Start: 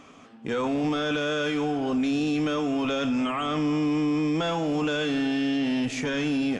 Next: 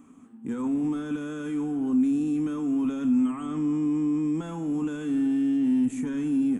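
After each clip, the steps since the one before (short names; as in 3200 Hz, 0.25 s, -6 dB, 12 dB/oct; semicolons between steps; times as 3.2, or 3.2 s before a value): EQ curve 140 Hz 0 dB, 250 Hz +10 dB, 610 Hz -13 dB, 930 Hz -3 dB, 5100 Hz -18 dB, 8100 Hz +8 dB; gain -5.5 dB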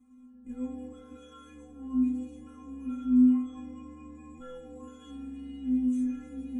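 octaver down 2 oct, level 0 dB; metallic resonator 250 Hz, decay 0.81 s, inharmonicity 0.008; gain +6.5 dB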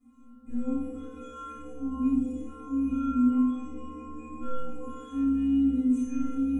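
flutter echo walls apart 5 m, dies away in 0.61 s; reverb RT60 0.45 s, pre-delay 4 ms, DRR -6.5 dB; gain -8 dB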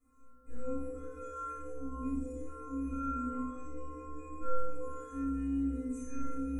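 fixed phaser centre 850 Hz, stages 6; gain +1 dB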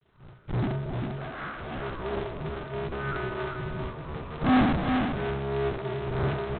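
cycle switcher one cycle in 2, inverted; echo 0.397 s -5.5 dB; gain +3.5 dB; G.726 24 kbps 8000 Hz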